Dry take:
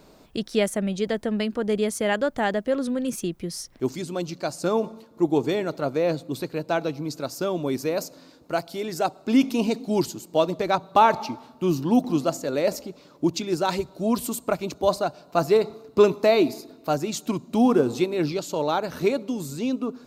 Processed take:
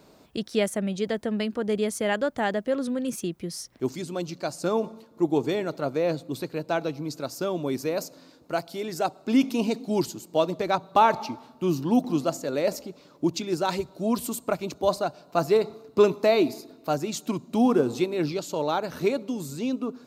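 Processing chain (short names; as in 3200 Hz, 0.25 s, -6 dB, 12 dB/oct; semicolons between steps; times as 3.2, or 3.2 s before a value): HPF 61 Hz; gain -2 dB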